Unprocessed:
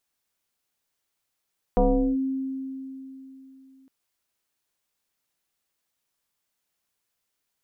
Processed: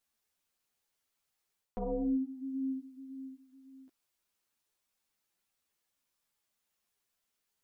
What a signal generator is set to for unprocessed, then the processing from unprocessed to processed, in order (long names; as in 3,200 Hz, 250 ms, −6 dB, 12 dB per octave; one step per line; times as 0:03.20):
two-operator FM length 2.11 s, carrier 266 Hz, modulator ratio 0.87, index 2.1, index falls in 0.40 s linear, decay 3.35 s, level −15 dB
reversed playback
downward compressor 6 to 1, threshold −29 dBFS
reversed playback
string-ensemble chorus